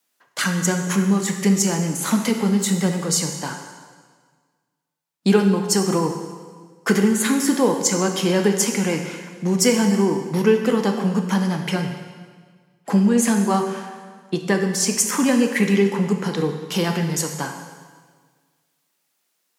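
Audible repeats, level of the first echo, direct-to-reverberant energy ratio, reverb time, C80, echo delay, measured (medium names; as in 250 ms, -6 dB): no echo, no echo, 4.0 dB, 1.6 s, 7.5 dB, no echo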